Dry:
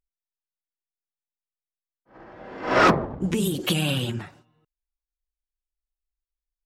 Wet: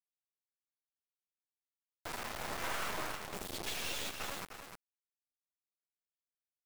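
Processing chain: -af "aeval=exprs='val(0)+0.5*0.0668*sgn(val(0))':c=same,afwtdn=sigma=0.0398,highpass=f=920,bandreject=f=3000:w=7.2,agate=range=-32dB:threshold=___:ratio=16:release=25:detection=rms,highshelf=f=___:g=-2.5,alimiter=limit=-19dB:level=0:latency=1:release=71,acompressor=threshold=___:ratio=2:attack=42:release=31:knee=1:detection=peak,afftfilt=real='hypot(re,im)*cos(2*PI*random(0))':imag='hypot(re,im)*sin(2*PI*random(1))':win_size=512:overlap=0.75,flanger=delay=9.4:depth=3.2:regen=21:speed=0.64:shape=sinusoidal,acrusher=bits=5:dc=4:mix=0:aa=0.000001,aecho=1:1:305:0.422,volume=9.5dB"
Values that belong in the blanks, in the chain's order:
-47dB, 9200, -45dB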